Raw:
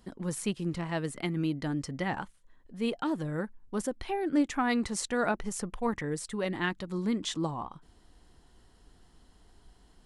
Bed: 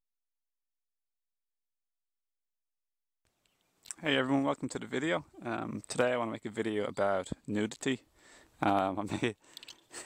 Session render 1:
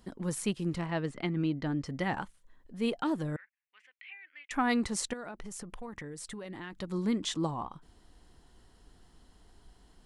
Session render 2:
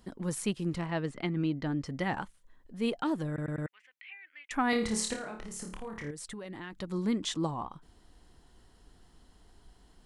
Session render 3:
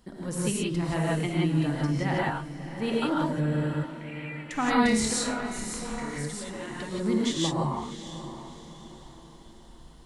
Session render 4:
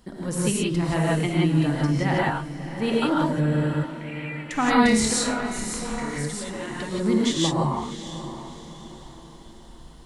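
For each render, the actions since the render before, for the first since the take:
0.86–1.86 s: distance through air 110 m; 3.36–4.51 s: Butterworth band-pass 2.3 kHz, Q 2.7; 5.13–6.73 s: compression 12:1, threshold -38 dBFS
3.28 s: stutter in place 0.10 s, 4 plays; 4.70–6.11 s: flutter echo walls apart 4.7 m, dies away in 0.4 s
on a send: echo that smears into a reverb 642 ms, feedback 44%, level -12 dB; on the sum: gated-style reverb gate 200 ms rising, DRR -4.5 dB
trim +4.5 dB

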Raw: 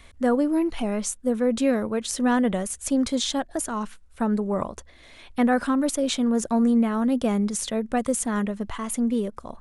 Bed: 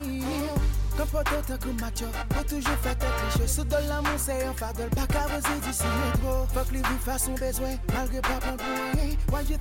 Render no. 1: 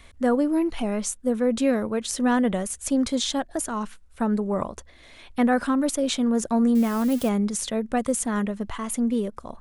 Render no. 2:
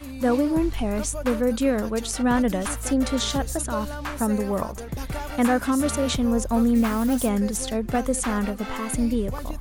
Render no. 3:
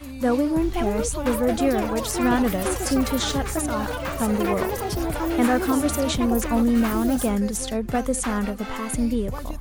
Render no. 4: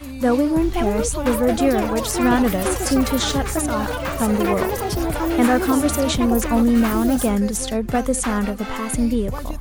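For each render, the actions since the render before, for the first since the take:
6.75–7.29 s: zero-crossing glitches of -25.5 dBFS
add bed -5 dB
ever faster or slower copies 593 ms, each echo +6 st, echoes 3, each echo -6 dB
trim +3.5 dB

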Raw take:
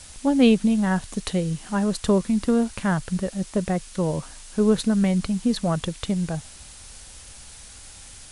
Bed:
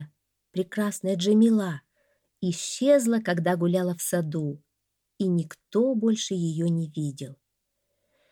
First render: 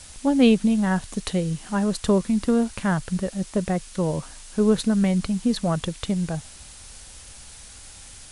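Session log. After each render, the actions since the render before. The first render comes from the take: no audible change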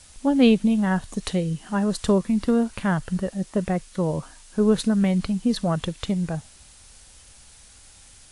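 noise print and reduce 6 dB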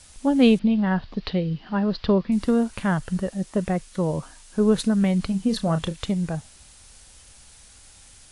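0.59–2.32 s: Chebyshev low-pass 4.8 kHz, order 5; 5.26–6.01 s: doubling 31 ms -11 dB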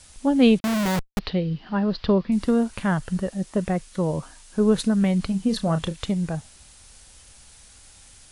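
0.60–1.19 s: Schmitt trigger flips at -28.5 dBFS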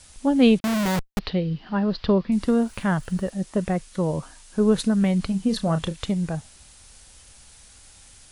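2.63–3.30 s: small samples zeroed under -51 dBFS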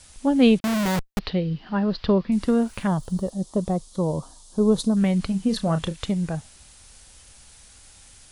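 2.87–4.97 s: high-order bell 2 kHz -15 dB 1.2 oct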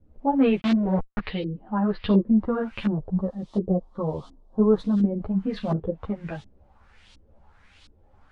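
LFO low-pass saw up 1.4 Hz 290–4000 Hz; three-phase chorus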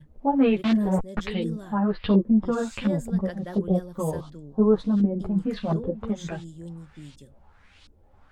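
add bed -14 dB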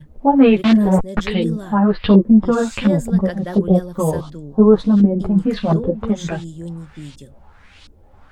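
trim +9 dB; peak limiter -1 dBFS, peak gain reduction 1 dB

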